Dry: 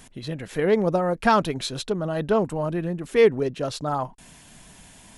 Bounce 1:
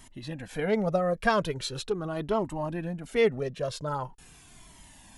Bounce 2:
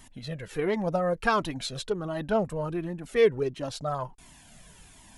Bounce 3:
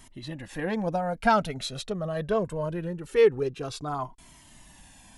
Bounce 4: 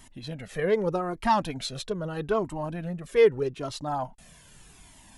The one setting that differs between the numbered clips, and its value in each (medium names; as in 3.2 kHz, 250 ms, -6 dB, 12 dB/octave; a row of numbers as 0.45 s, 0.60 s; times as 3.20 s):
Shepard-style flanger, rate: 0.42 Hz, 1.4 Hz, 0.23 Hz, 0.81 Hz